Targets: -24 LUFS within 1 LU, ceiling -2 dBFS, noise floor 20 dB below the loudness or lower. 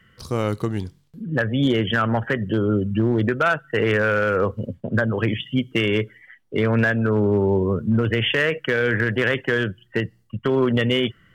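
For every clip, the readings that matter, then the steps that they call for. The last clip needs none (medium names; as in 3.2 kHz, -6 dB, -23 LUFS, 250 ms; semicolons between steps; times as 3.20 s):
clipped samples 0.7%; clipping level -12.0 dBFS; loudness -21.5 LUFS; peak level -12.0 dBFS; loudness target -24.0 LUFS
-> clip repair -12 dBFS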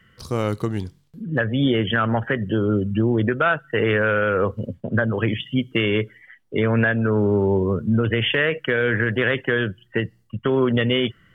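clipped samples 0.0%; loudness -21.5 LUFS; peak level -8.5 dBFS; loudness target -24.0 LUFS
-> trim -2.5 dB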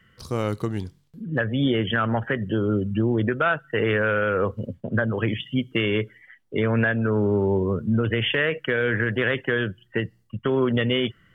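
loudness -24.0 LUFS; peak level -11.0 dBFS; noise floor -61 dBFS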